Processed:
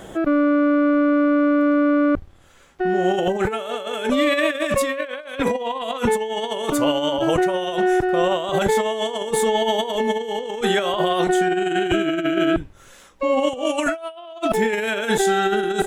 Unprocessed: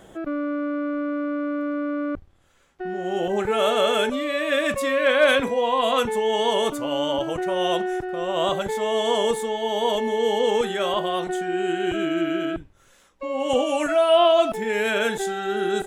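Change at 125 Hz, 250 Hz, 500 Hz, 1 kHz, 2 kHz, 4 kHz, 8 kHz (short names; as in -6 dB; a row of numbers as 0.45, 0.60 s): +7.0, +7.0, +1.0, +2.0, +2.0, 0.0, +5.0 dB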